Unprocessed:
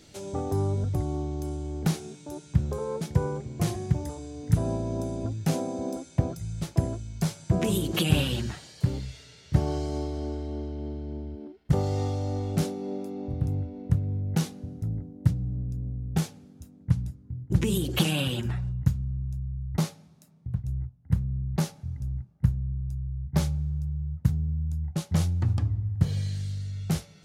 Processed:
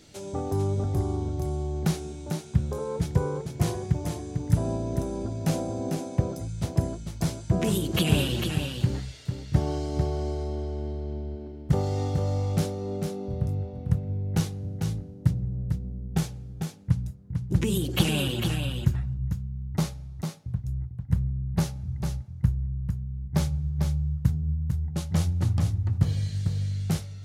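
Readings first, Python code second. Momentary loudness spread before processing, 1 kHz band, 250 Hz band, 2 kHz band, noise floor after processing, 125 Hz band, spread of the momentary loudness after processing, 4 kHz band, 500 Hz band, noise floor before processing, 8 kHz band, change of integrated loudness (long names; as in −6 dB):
9 LU, +1.0 dB, +0.5 dB, +1.0 dB, −41 dBFS, +1.0 dB, 8 LU, +1.0 dB, +1.5 dB, −53 dBFS, +1.0 dB, +1.0 dB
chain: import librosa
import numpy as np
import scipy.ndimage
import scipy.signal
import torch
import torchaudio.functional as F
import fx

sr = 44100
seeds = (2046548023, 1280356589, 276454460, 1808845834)

y = x + 10.0 ** (-6.0 / 20.0) * np.pad(x, (int(448 * sr / 1000.0), 0))[:len(x)]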